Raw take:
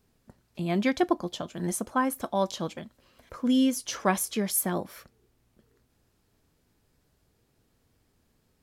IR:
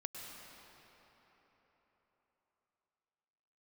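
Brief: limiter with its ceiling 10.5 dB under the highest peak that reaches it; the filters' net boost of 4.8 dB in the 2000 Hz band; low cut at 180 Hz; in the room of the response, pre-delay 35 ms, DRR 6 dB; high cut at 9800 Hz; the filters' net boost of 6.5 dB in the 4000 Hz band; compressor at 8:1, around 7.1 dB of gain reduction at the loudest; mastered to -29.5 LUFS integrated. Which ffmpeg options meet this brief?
-filter_complex "[0:a]highpass=180,lowpass=9.8k,equalizer=f=2k:t=o:g=4.5,equalizer=f=4k:t=o:g=7,acompressor=threshold=-25dB:ratio=8,alimiter=level_in=0.5dB:limit=-24dB:level=0:latency=1,volume=-0.5dB,asplit=2[a][b];[1:a]atrim=start_sample=2205,adelay=35[c];[b][c]afir=irnorm=-1:irlink=0,volume=-4.5dB[d];[a][d]amix=inputs=2:normalize=0,volume=5dB"

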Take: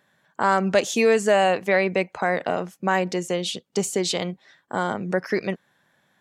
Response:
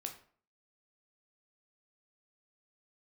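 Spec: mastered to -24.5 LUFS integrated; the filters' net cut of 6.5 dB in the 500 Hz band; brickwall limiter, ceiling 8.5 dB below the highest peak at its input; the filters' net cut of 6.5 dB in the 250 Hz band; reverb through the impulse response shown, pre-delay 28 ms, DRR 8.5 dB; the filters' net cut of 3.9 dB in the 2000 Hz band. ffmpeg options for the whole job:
-filter_complex "[0:a]equalizer=f=250:t=o:g=-8.5,equalizer=f=500:t=o:g=-5.5,equalizer=f=2k:t=o:g=-4.5,alimiter=limit=-18dB:level=0:latency=1,asplit=2[a][b];[1:a]atrim=start_sample=2205,adelay=28[c];[b][c]afir=irnorm=-1:irlink=0,volume=-6.5dB[d];[a][d]amix=inputs=2:normalize=0,volume=5.5dB"

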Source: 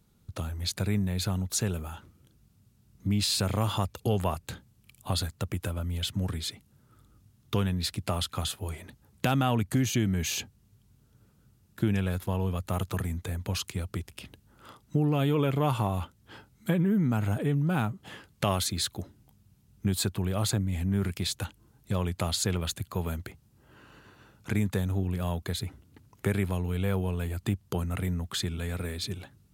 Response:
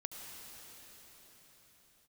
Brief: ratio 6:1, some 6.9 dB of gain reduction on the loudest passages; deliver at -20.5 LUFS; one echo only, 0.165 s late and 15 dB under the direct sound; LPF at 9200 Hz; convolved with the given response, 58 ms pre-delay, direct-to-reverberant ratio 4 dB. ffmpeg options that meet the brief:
-filter_complex "[0:a]lowpass=9.2k,acompressor=threshold=-29dB:ratio=6,aecho=1:1:165:0.178,asplit=2[a][b];[1:a]atrim=start_sample=2205,adelay=58[c];[b][c]afir=irnorm=-1:irlink=0,volume=-2.5dB[d];[a][d]amix=inputs=2:normalize=0,volume=13.5dB"

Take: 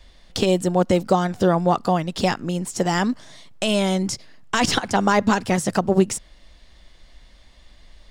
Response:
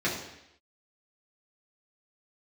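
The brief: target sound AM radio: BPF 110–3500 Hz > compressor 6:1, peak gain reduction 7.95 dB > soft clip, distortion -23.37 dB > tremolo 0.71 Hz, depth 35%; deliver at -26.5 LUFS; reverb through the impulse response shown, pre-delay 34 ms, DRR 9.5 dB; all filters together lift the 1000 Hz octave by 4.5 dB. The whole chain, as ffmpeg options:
-filter_complex "[0:a]equalizer=f=1k:t=o:g=6,asplit=2[a][b];[1:a]atrim=start_sample=2205,adelay=34[c];[b][c]afir=irnorm=-1:irlink=0,volume=-20.5dB[d];[a][d]amix=inputs=2:normalize=0,highpass=110,lowpass=3.5k,acompressor=threshold=-17dB:ratio=6,asoftclip=threshold=-8.5dB,tremolo=f=0.71:d=0.35,volume=-0.5dB"

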